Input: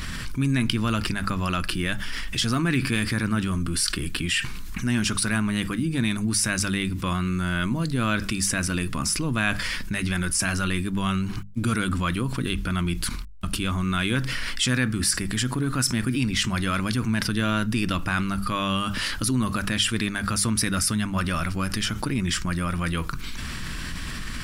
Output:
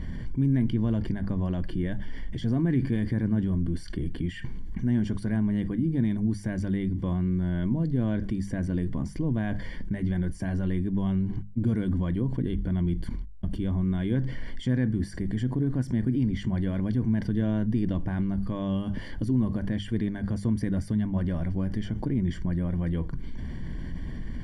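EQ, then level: boxcar filter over 34 samples; 0.0 dB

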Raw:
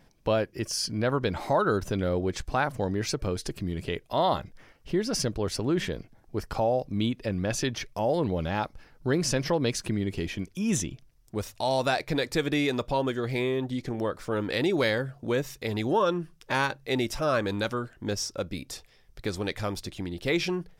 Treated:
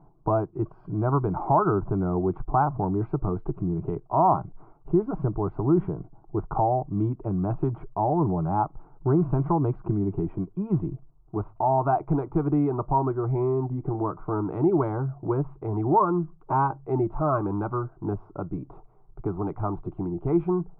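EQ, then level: dynamic bell 460 Hz, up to -5 dB, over -39 dBFS, Q 1.8; steep low-pass 1.4 kHz 36 dB/octave; static phaser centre 350 Hz, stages 8; +8.0 dB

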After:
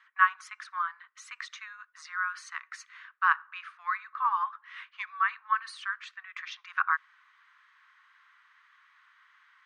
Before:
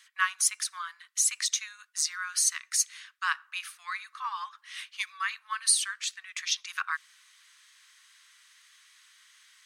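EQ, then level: Butterworth band-pass 820 Hz, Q 0.8; peaking EQ 650 Hz -7 dB 0.28 oct; +8.0 dB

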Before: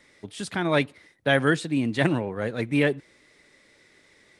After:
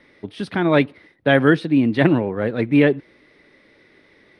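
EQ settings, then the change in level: boxcar filter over 6 samples; peaking EQ 300 Hz +4.5 dB 1.4 oct; +4.5 dB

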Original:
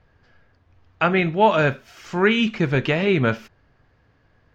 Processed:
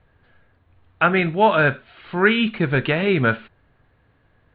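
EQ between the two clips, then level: steep low-pass 4.2 kHz 96 dB/octave; dynamic bell 1.5 kHz, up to +6 dB, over -36 dBFS, Q 3.3; 0.0 dB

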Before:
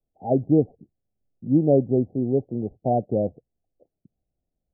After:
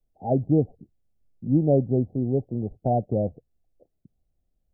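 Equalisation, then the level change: dynamic bell 360 Hz, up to -4 dB, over -30 dBFS, Q 0.89; bass shelf 71 Hz +11.5 dB; 0.0 dB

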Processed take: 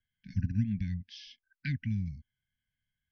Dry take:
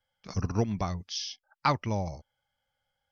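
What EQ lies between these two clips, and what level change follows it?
brick-wall FIR band-stop 280–1500 Hz; distance through air 250 m; treble shelf 3.7 kHz -8.5 dB; 0.0 dB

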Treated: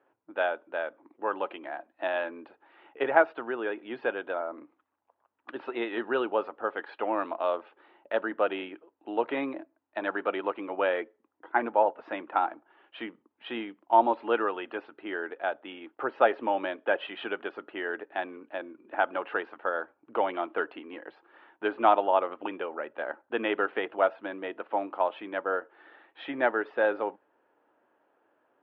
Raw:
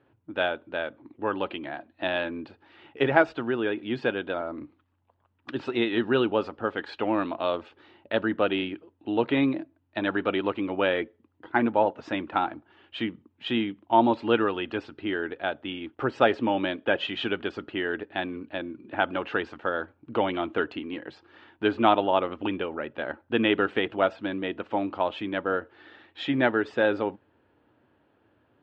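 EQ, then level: high-pass 600 Hz 12 dB/octave; low-pass 1.2 kHz 6 dB/octave; distance through air 240 m; +4.0 dB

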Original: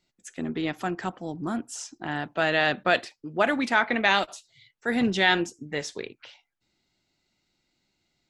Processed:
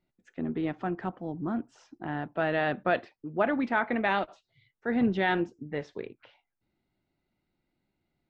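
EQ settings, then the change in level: tape spacing loss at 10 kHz 41 dB; 0.0 dB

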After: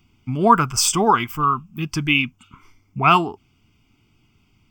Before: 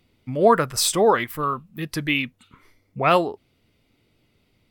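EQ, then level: static phaser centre 2.7 kHz, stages 8; +6.5 dB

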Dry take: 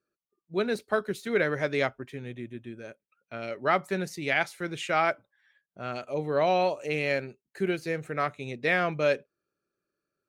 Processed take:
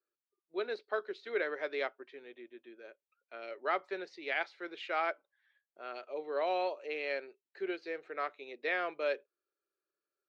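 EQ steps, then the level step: elliptic band-pass 360–4400 Hz, stop band 60 dB; -7.5 dB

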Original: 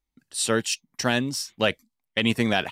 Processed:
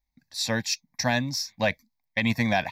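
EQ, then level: static phaser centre 2 kHz, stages 8; +2.5 dB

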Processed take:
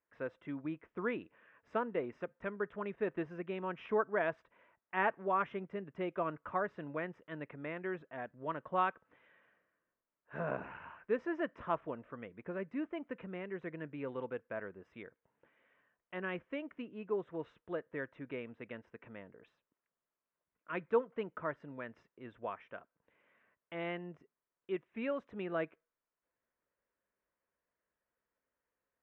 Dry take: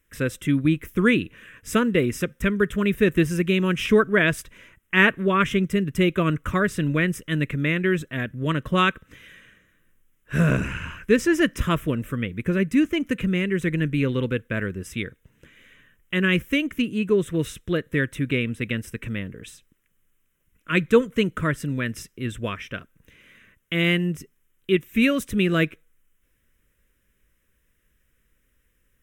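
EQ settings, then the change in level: band-pass filter 800 Hz, Q 5.3; distance through air 210 m; +3.0 dB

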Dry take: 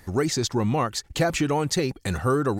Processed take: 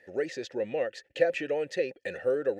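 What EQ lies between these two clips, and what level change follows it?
vowel filter e; bass shelf 110 Hz -6.5 dB; +6.0 dB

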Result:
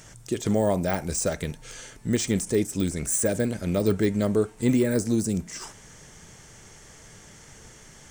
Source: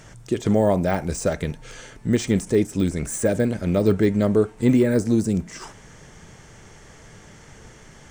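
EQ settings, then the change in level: treble shelf 4.7 kHz +11.5 dB; -4.5 dB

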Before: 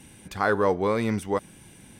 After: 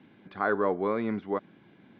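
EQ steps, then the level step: distance through air 350 m; cabinet simulation 230–3900 Hz, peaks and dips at 500 Hz -5 dB, 880 Hz -5 dB, 1.9 kHz -3 dB, 2.7 kHz -7 dB; 0.0 dB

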